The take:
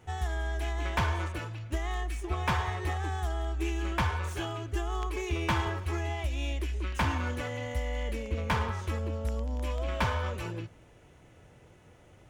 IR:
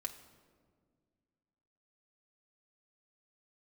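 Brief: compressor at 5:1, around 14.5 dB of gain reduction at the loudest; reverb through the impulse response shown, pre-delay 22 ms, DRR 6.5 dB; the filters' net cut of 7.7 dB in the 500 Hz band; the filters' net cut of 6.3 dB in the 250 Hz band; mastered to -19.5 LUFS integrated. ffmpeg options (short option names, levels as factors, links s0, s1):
-filter_complex "[0:a]equalizer=f=250:t=o:g=-5.5,equalizer=f=500:t=o:g=-9,acompressor=threshold=0.00708:ratio=5,asplit=2[s0][s1];[1:a]atrim=start_sample=2205,adelay=22[s2];[s1][s2]afir=irnorm=-1:irlink=0,volume=0.562[s3];[s0][s3]amix=inputs=2:normalize=0,volume=21.1"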